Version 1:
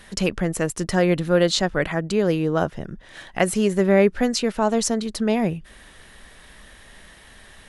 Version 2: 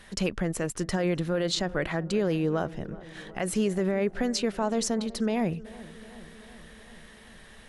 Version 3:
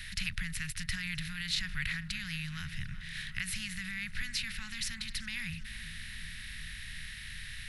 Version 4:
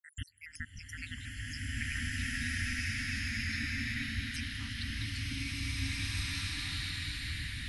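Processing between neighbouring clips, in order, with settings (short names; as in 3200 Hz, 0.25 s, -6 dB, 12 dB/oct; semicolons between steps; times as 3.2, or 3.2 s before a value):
high shelf 9300 Hz -4 dB; limiter -13 dBFS, peak gain reduction 9 dB; darkening echo 0.376 s, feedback 71%, low-pass 1600 Hz, level -18.5 dB; gain -4 dB
per-bin compression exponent 0.6; Chebyshev band-stop 120–1900 Hz, order 3; bell 7000 Hz -11.5 dB 0.92 oct
random spectral dropouts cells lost 84%; ring modulator 78 Hz; bloom reverb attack 2.01 s, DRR -11.5 dB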